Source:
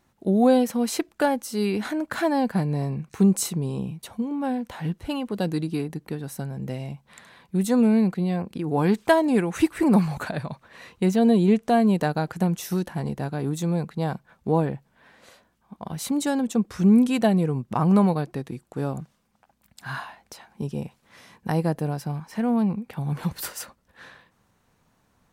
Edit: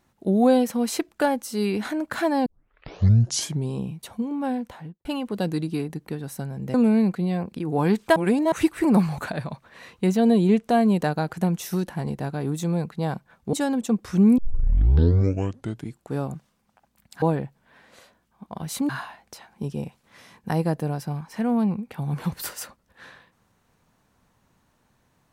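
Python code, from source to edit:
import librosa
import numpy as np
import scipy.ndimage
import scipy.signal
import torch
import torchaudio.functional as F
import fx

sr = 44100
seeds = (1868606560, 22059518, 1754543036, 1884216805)

y = fx.studio_fade_out(x, sr, start_s=4.56, length_s=0.49)
y = fx.edit(y, sr, fx.tape_start(start_s=2.46, length_s=1.23),
    fx.cut(start_s=6.74, length_s=0.99),
    fx.reverse_span(start_s=9.15, length_s=0.36),
    fx.move(start_s=14.52, length_s=1.67, to_s=19.88),
    fx.tape_start(start_s=17.04, length_s=1.63), tone=tone)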